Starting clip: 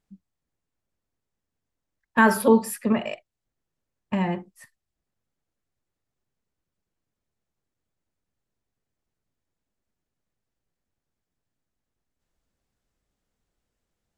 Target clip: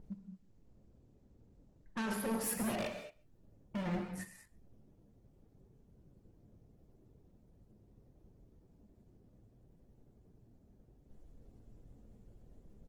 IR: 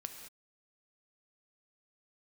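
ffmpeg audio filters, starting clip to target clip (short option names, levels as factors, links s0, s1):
-filter_complex "[0:a]lowshelf=f=350:g=5.5,areverse,acompressor=threshold=0.0708:ratio=5,areverse,alimiter=limit=0.0944:level=0:latency=1:release=101,acrossover=split=670[s0][s1];[s0]acompressor=mode=upward:threshold=0.00794:ratio=2.5[s2];[s2][s1]amix=inputs=2:normalize=0,atempo=1.1,asoftclip=type=hard:threshold=0.0168,flanger=delay=2.2:depth=7.8:regen=79:speed=0.7:shape=sinusoidal,asplit=2[s3][s4];[s4]adelay=139.9,volume=0.0631,highshelf=f=4000:g=-3.15[s5];[s3][s5]amix=inputs=2:normalize=0[s6];[1:a]atrim=start_sample=2205[s7];[s6][s7]afir=irnorm=-1:irlink=0,volume=2.66" -ar 48000 -c:a libopus -b:a 16k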